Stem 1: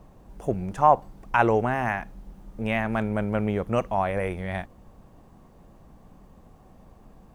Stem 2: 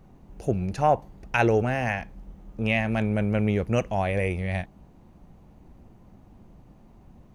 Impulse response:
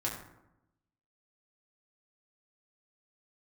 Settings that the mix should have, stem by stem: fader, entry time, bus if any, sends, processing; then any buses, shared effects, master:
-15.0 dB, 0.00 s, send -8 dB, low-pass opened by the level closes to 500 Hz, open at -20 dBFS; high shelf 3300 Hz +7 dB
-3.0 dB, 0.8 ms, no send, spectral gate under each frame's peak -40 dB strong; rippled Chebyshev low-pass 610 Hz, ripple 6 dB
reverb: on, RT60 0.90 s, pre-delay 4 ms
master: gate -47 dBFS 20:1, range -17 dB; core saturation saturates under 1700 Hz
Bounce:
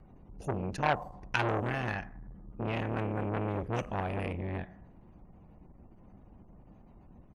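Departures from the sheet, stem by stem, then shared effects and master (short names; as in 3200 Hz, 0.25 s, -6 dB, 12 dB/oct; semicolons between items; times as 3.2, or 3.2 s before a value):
stem 2: missing rippled Chebyshev low-pass 610 Hz, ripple 6 dB; master: missing gate -47 dBFS 20:1, range -17 dB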